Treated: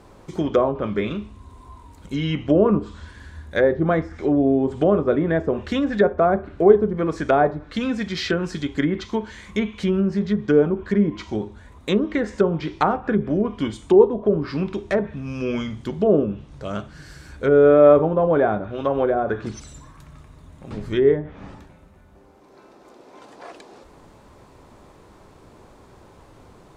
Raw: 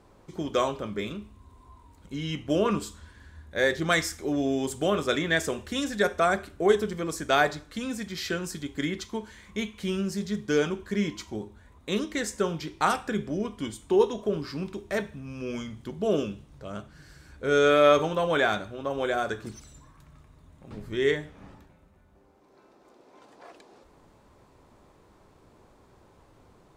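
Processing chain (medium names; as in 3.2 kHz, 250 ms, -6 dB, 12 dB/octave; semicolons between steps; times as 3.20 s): low-pass that closes with the level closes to 750 Hz, closed at -23.5 dBFS; trim +9 dB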